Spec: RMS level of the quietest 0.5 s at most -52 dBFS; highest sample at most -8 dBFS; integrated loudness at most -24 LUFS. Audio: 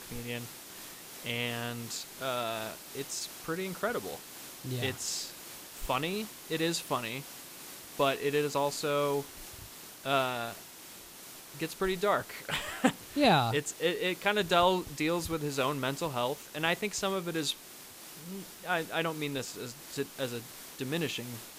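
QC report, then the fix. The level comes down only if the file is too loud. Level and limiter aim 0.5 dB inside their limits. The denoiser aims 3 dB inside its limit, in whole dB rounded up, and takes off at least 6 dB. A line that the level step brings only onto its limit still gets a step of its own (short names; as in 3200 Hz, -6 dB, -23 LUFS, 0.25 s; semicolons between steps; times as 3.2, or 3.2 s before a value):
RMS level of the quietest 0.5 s -49 dBFS: fail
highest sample -11.0 dBFS: OK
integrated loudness -32.5 LUFS: OK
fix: denoiser 6 dB, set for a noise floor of -49 dBFS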